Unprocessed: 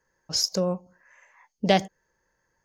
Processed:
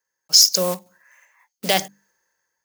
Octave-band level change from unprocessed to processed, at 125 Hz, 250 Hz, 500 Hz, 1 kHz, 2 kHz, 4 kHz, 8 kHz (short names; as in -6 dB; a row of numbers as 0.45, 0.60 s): -4.0, -4.0, +1.0, +1.0, +5.0, +11.5, +14.5 dB